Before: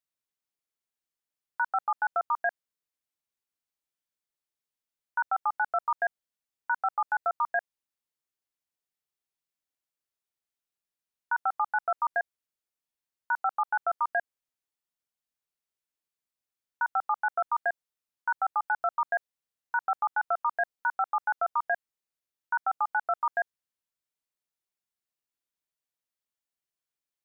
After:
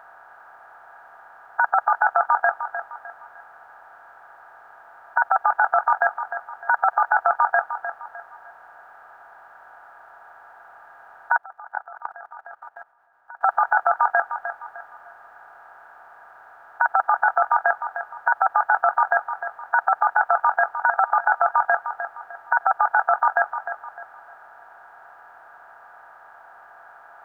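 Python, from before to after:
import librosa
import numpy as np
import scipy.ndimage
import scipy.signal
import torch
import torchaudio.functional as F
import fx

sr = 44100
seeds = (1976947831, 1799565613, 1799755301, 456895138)

y = fx.bin_compress(x, sr, power=0.4)
y = fx.echo_feedback(y, sr, ms=304, feedback_pct=36, wet_db=-10)
y = fx.level_steps(y, sr, step_db=23, at=(11.37, 13.41))
y = y * librosa.db_to_amplitude(7.0)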